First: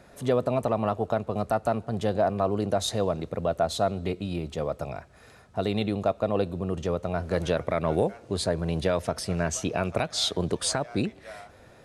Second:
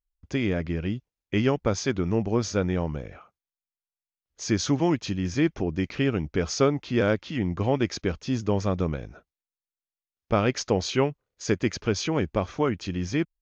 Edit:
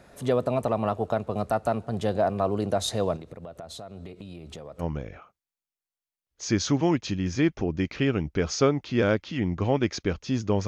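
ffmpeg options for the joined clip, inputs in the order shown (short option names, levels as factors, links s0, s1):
-filter_complex "[0:a]asettb=1/sr,asplit=3[s0][s1][s2];[s0]atrim=end=3.164[s3];[s1]atrim=start=3.16:end=4.84,asetpts=PTS-STARTPTS,afade=t=in:d=0.004:c=qsin,afade=t=out:st=1.676:d=0.004:c=qsin,acompressor=threshold=0.0158:ratio=20:attack=3.2:release=140:knee=1:detection=peak[s4];[s2]atrim=start=4.836[s5];[s3][s4]acrossfade=d=0.004:c1=hsin:c2=qsin[s6];[s6][s5]acrossfade=d=0.004:c1=qsin:c2=hsin,apad=whole_dur=10.67,atrim=end=10.67,atrim=end=4.84,asetpts=PTS-STARTPTS[s7];[1:a]atrim=start=2.77:end=8.66,asetpts=PTS-STARTPTS[s8];[s7][s8]acrossfade=d=0.06:c1=tri:c2=tri"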